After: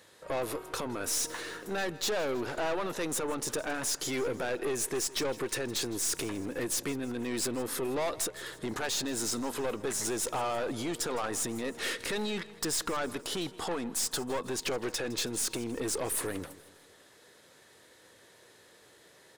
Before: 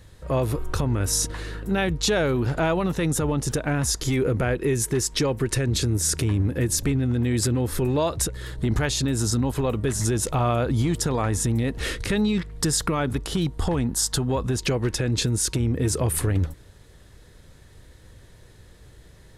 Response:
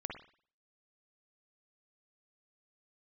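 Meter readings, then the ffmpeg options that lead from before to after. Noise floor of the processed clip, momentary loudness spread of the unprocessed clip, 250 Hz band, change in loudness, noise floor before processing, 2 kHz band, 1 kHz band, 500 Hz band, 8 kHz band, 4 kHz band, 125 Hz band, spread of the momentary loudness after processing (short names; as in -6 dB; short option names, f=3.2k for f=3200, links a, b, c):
-59 dBFS, 4 LU, -11.0 dB, -8.5 dB, -50 dBFS, -5.5 dB, -6.0 dB, -7.0 dB, -6.0 dB, -5.5 dB, -22.5 dB, 5 LU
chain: -af "highpass=390,aeval=exprs='(tanh(25.1*val(0)+0.3)-tanh(0.3))/25.1':c=same,aecho=1:1:161|322|483|644:0.112|0.0561|0.0281|0.014"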